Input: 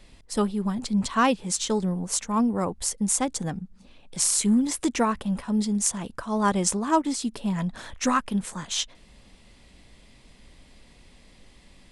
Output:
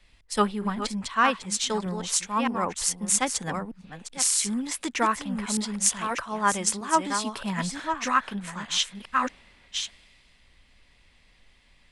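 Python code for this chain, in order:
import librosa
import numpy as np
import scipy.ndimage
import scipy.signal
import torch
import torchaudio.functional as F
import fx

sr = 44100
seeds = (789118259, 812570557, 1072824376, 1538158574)

y = fx.reverse_delay(x, sr, ms=619, wet_db=-6.5)
y = fx.peak_eq(y, sr, hz=2000.0, db=13.5, octaves=2.9)
y = fx.rider(y, sr, range_db=4, speed_s=0.5)
y = fx.high_shelf(y, sr, hz=8800.0, db=fx.steps((0.0, 6.5), (5.95, 11.5), (7.77, 2.5)))
y = fx.band_widen(y, sr, depth_pct=40)
y = F.gain(torch.from_numpy(y), -8.5).numpy()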